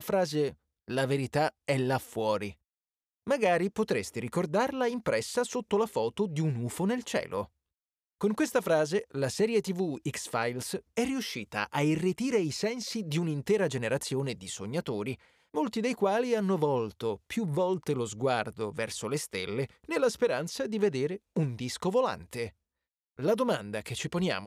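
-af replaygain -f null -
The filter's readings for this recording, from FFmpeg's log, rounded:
track_gain = +10.4 dB
track_peak = 0.135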